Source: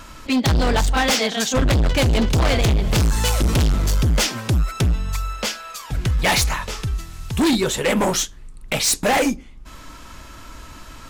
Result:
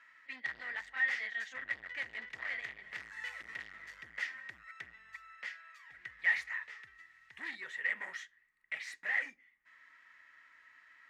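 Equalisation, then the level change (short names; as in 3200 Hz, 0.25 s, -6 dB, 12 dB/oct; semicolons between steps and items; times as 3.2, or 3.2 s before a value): band-pass 1900 Hz, Q 18; 0.0 dB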